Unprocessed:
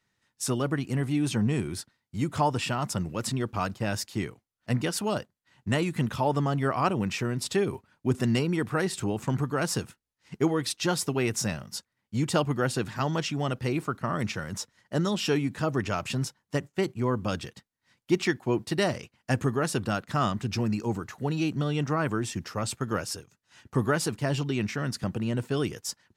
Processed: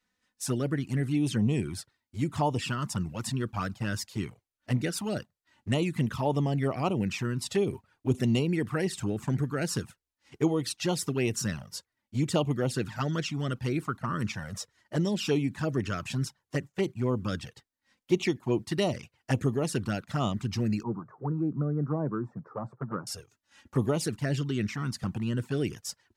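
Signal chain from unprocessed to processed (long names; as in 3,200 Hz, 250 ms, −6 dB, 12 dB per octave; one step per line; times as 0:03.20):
0:20.83–0:23.07: elliptic band-pass filter 130–1,200 Hz, stop band 40 dB
flanger swept by the level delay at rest 4 ms, full sweep at −21.5 dBFS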